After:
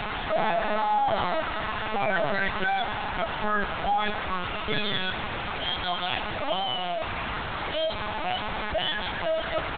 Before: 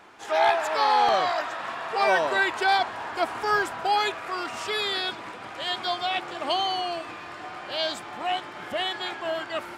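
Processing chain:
linear delta modulator 64 kbit/s, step −25.5 dBFS
comb filter 4.7 ms, depth 47%
brickwall limiter −17 dBFS, peak gain reduction 8 dB
linear-prediction vocoder at 8 kHz pitch kept
echo with a time of its own for lows and highs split 690 Hz, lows 237 ms, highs 93 ms, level −15 dB

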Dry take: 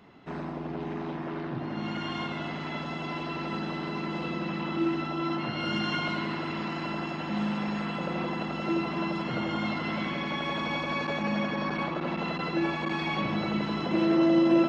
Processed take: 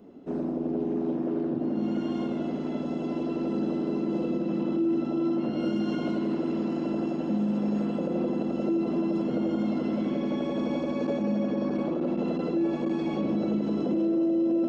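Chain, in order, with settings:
octave-band graphic EQ 125/250/500/1,000/2,000/4,000 Hz −8/+10/+8/−8/−12/−8 dB
brickwall limiter −19.5 dBFS, peak gain reduction 12.5 dB

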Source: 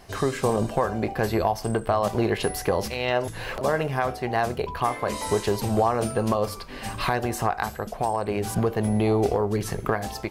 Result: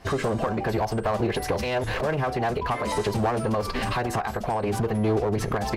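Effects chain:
camcorder AGC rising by 77 dB per second
low-pass filter 4,000 Hz 6 dB per octave
phase-vocoder stretch with locked phases 0.56×
asymmetric clip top −22 dBFS

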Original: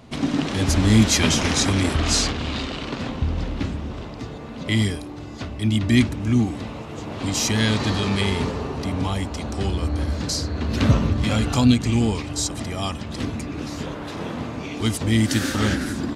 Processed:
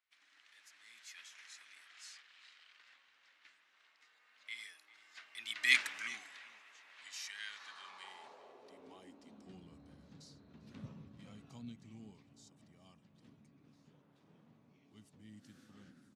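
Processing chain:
source passing by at 0:05.85, 15 m/s, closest 1.7 metres
high-pass filter sweep 1,800 Hz → 150 Hz, 0:07.44–0:09.73
slap from a distant wall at 68 metres, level −17 dB
level −2.5 dB

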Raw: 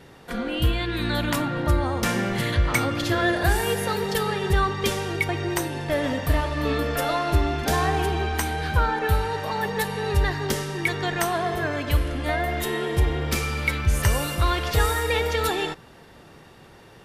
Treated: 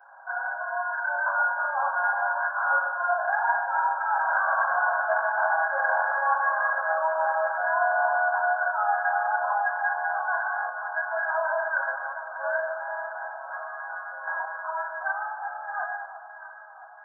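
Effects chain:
source passing by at 0:04.51, 17 m/s, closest 2.3 metres
frequency shifter −28 Hz
in parallel at −3 dB: sine wavefolder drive 18 dB, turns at −13 dBFS
on the sum: linear-phase brick-wall band-pass 540–1,700 Hz
spectral tilt +4.5 dB per octave
notch filter 1,200 Hz, Q 10
delay that swaps between a low-pass and a high-pass 339 ms, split 1,100 Hz, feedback 78%, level −12 dB
reversed playback
downward compressor 16 to 1, threshold −38 dBFS, peak gain reduction 18.5 dB
reversed playback
convolution reverb RT60 0.40 s, pre-delay 3 ms, DRR −5.5 dB

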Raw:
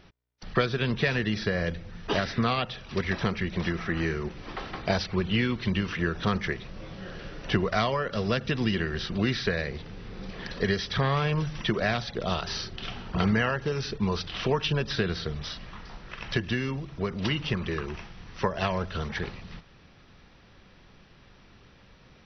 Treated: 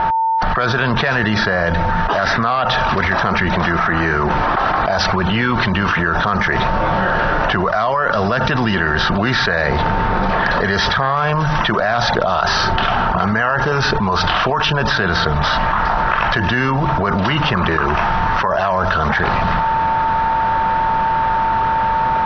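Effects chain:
steady tone 900 Hz −54 dBFS
flat-topped bell 1,000 Hz +12.5 dB
low-pass that shuts in the quiet parts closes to 2,800 Hz, open at −13.5 dBFS
envelope flattener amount 100%
level −4 dB

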